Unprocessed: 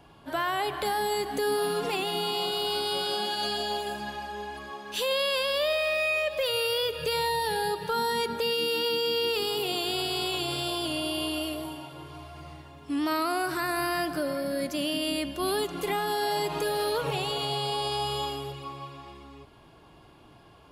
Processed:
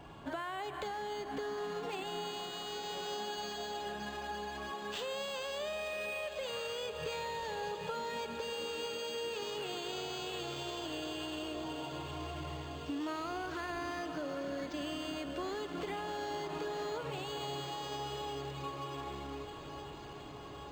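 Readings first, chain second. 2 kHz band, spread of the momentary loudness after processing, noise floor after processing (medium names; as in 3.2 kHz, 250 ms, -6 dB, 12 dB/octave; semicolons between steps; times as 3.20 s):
-11.0 dB, 4 LU, -47 dBFS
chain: compression 6:1, threshold -41 dBFS, peak gain reduction 15.5 dB; echo that smears into a reverb 1026 ms, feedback 74%, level -10.5 dB; decimation joined by straight lines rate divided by 4×; trim +3 dB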